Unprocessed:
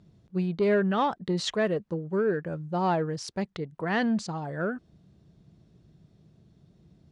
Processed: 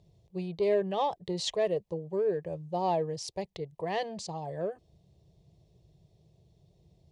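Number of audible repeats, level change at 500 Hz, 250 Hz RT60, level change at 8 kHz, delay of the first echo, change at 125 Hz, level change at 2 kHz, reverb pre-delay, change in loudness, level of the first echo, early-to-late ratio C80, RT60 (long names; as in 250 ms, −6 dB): no echo audible, −1.5 dB, no reverb audible, −0.5 dB, no echo audible, −7.5 dB, −11.5 dB, no reverb audible, −4.0 dB, no echo audible, no reverb audible, no reverb audible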